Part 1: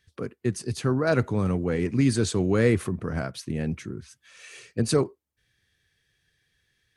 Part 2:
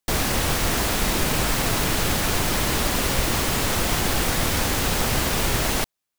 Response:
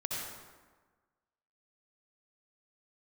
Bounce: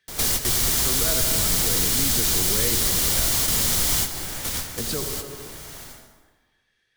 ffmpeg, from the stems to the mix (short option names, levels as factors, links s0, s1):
-filter_complex "[0:a]highpass=f=410:p=1,highshelf=f=6300:g=-9,volume=0.841,asplit=3[s0][s1][s2];[s1]volume=0.596[s3];[1:a]highshelf=f=3200:g=10.5,bandreject=f=2600:w=13,volume=0.562,afade=t=out:st=4.2:d=0.62:silence=0.375837,asplit=2[s4][s5];[s5]volume=0.266[s6];[s2]apad=whole_len=272907[s7];[s4][s7]sidechaingate=range=0.0224:threshold=0.00398:ratio=16:detection=peak[s8];[2:a]atrim=start_sample=2205[s9];[s3][s6]amix=inputs=2:normalize=0[s10];[s10][s9]afir=irnorm=-1:irlink=0[s11];[s0][s8][s11]amix=inputs=3:normalize=0,acrossover=split=130|3000[s12][s13][s14];[s13]acompressor=threshold=0.0178:ratio=2[s15];[s12][s15][s14]amix=inputs=3:normalize=0"